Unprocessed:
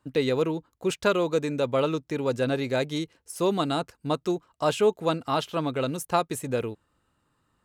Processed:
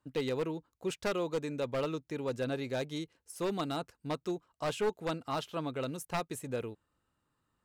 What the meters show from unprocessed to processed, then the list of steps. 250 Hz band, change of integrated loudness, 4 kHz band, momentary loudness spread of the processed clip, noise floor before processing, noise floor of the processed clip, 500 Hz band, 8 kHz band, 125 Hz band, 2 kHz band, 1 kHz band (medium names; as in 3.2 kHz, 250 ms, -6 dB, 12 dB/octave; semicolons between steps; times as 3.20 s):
-8.5 dB, -9.0 dB, -8.5 dB, 6 LU, -73 dBFS, -82 dBFS, -9.5 dB, -8.0 dB, -8.5 dB, -8.0 dB, -9.5 dB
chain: one-sided wavefolder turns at -18 dBFS; trim -8.5 dB